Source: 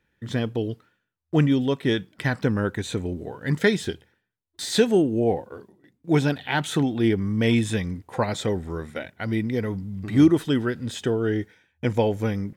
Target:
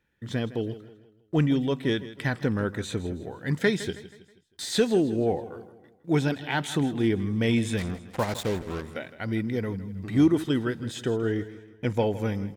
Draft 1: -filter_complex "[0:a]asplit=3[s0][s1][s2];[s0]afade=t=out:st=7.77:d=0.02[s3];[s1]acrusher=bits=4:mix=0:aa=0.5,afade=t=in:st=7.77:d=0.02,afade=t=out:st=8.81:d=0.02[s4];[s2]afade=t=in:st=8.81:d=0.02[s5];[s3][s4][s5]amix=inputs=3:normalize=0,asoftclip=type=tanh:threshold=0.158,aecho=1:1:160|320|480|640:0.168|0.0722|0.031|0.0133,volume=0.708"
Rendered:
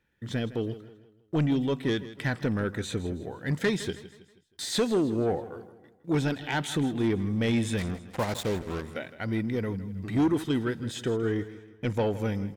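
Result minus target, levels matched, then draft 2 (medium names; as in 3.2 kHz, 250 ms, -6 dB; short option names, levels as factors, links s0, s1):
saturation: distortion +15 dB
-filter_complex "[0:a]asplit=3[s0][s1][s2];[s0]afade=t=out:st=7.77:d=0.02[s3];[s1]acrusher=bits=4:mix=0:aa=0.5,afade=t=in:st=7.77:d=0.02,afade=t=out:st=8.81:d=0.02[s4];[s2]afade=t=in:st=8.81:d=0.02[s5];[s3][s4][s5]amix=inputs=3:normalize=0,asoftclip=type=tanh:threshold=0.531,aecho=1:1:160|320|480|640:0.168|0.0722|0.031|0.0133,volume=0.708"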